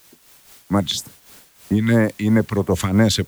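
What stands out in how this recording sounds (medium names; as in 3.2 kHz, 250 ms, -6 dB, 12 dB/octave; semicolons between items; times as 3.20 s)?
phasing stages 2, 3.1 Hz, lowest notch 550–3900 Hz; a quantiser's noise floor 8-bit, dither triangular; random flutter of the level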